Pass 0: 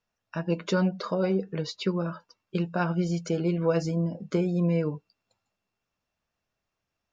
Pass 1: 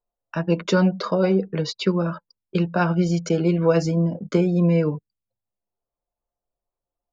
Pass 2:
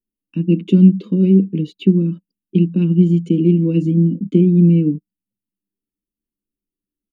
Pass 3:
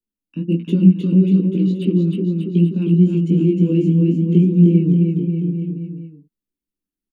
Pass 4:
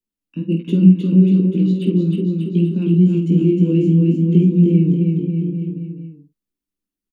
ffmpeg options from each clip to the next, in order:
-filter_complex "[0:a]acrossover=split=180|450|1100[a][b][c][d];[c]acompressor=mode=upward:threshold=-48dB:ratio=2.5[e];[a][b][e][d]amix=inputs=4:normalize=0,anlmdn=0.0398,volume=6.5dB"
-af "firequalizer=gain_entry='entry(120,0);entry(190,15);entry(300,15);entry(670,-29);entry(1000,-23);entry(1500,-26);entry(2800,4);entry(5100,-23);entry(9400,5)':delay=0.05:min_phase=1,volume=-3.5dB"
-filter_complex "[0:a]flanger=delay=17:depth=5.6:speed=1.5,acrossover=split=230|1200[a][b][c];[c]volume=35.5dB,asoftclip=hard,volume=-35.5dB[d];[a][b][d]amix=inputs=3:normalize=0,aecho=1:1:310|589|840.1|1066|1269:0.631|0.398|0.251|0.158|0.1"
-filter_complex "[0:a]asplit=2[a][b];[b]adelay=49,volume=-8dB[c];[a][c]amix=inputs=2:normalize=0"

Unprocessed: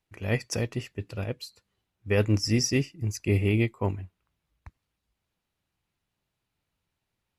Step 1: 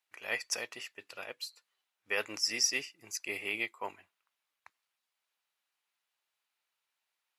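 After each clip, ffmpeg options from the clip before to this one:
-af "highpass=940"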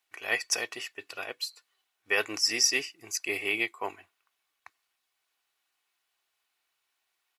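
-af "aecho=1:1:2.7:0.39,volume=5.5dB"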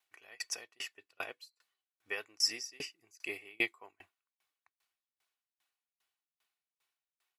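-af "aeval=exprs='val(0)*pow(10,-33*if(lt(mod(2.5*n/s,1),2*abs(2.5)/1000),1-mod(2.5*n/s,1)/(2*abs(2.5)/1000),(mod(2.5*n/s,1)-2*abs(2.5)/1000)/(1-2*abs(2.5)/1000))/20)':c=same"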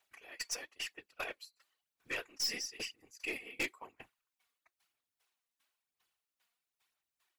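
-af "afftfilt=real='hypot(re,im)*cos(2*PI*random(0))':imag='hypot(re,im)*sin(2*PI*random(1))':win_size=512:overlap=0.75,aeval=exprs='(tanh(100*val(0)+0.1)-tanh(0.1))/100':c=same,aphaser=in_gain=1:out_gain=1:delay=4.3:decay=0.41:speed=1:type=sinusoidal,volume=8.5dB"

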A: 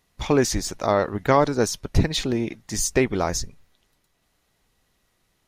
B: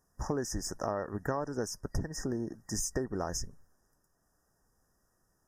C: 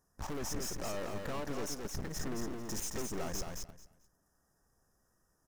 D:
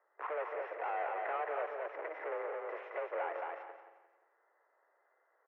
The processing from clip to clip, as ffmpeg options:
-af "afftfilt=real='re*(1-between(b*sr/4096,1900,4900))':imag='im*(1-between(b*sr/4096,1900,4900))':win_size=4096:overlap=0.75,acompressor=threshold=-26dB:ratio=5,volume=-4.5dB"
-filter_complex "[0:a]aeval=exprs='(tanh(141*val(0)+0.8)-tanh(0.8))/141':c=same,aecho=1:1:220|440|660:0.562|0.129|0.0297,asplit=2[a][b];[b]acrusher=bits=7:mix=0:aa=0.000001,volume=-8.5dB[c];[a][c]amix=inputs=2:normalize=0,volume=3dB"
-af "asoftclip=type=tanh:threshold=-32dB,aecho=1:1:176|352|528|704:0.282|0.107|0.0407|0.0155,highpass=f=300:t=q:w=0.5412,highpass=f=300:t=q:w=1.307,lowpass=f=2.2k:t=q:w=0.5176,lowpass=f=2.2k:t=q:w=0.7071,lowpass=f=2.2k:t=q:w=1.932,afreqshift=160,volume=6dB"

